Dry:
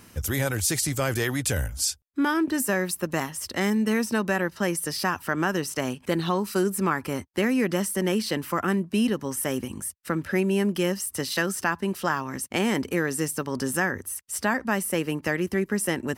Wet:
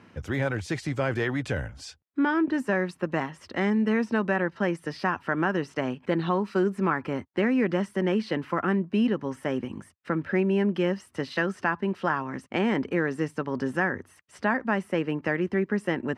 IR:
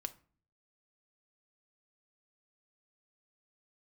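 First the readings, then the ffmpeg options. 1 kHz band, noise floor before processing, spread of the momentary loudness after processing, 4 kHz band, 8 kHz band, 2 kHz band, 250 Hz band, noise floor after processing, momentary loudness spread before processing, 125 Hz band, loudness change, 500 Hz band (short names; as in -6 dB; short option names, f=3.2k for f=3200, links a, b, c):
-0.5 dB, -53 dBFS, 7 LU, -8.0 dB, under -20 dB, -1.0 dB, 0.0 dB, -60 dBFS, 5 LU, -1.0 dB, -1.0 dB, 0.0 dB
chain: -af "highpass=110,lowpass=2.4k,bandreject=f=1.2k:w=27"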